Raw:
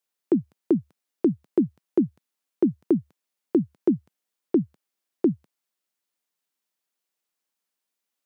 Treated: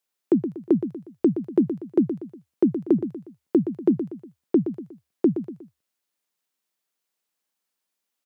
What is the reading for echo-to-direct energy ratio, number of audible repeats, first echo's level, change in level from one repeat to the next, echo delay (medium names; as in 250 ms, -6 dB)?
-9.5 dB, 3, -10.0 dB, -8.0 dB, 120 ms